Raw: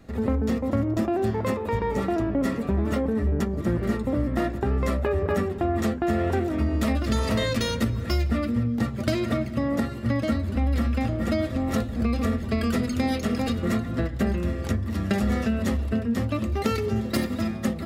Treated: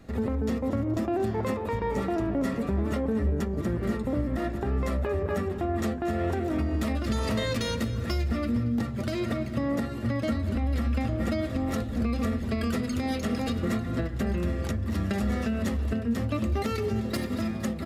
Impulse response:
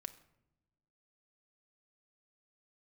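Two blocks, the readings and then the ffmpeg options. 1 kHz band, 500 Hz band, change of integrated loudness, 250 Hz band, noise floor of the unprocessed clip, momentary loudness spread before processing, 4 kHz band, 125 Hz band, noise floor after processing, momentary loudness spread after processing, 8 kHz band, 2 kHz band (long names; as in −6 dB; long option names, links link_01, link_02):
−3.5 dB, −3.0 dB, −3.0 dB, −3.0 dB, −32 dBFS, 2 LU, −3.5 dB, −3.0 dB, −34 dBFS, 2 LU, −3.0 dB, −3.5 dB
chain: -af "alimiter=limit=-19dB:level=0:latency=1:release=200,aecho=1:1:231|462|693|924:0.158|0.0713|0.0321|0.0144,aresample=32000,aresample=44100"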